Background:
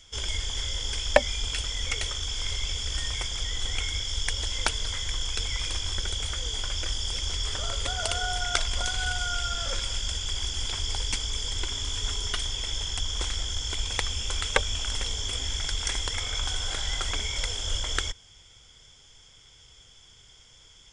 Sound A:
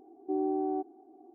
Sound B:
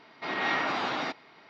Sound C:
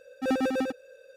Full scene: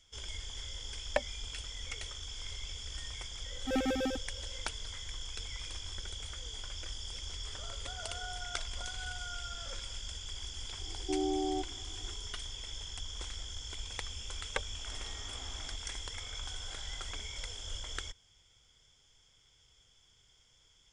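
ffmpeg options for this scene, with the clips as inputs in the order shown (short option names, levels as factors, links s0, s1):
-filter_complex "[0:a]volume=0.251[s0];[2:a]acompressor=threshold=0.0126:ratio=6:attack=3.2:release=140:knee=1:detection=peak[s1];[3:a]atrim=end=1.16,asetpts=PTS-STARTPTS,volume=0.531,afade=t=in:d=0.004:c=hsin,afade=t=out:st=1.156:d=0.004:c=hsin,adelay=152145S[s2];[1:a]atrim=end=1.34,asetpts=PTS-STARTPTS,volume=0.75,afade=t=in:d=0.004:c=hsin,afade=t=out:st=1.336:d=0.004:c=hsin,adelay=10800[s3];[s1]atrim=end=1.49,asetpts=PTS-STARTPTS,volume=0.237,afade=t=in:d=0.004:c=hsin,afade=t=out:st=1.486:d=0.004:c=hsin,adelay=14640[s4];[s0][s2][s3][s4]amix=inputs=4:normalize=0"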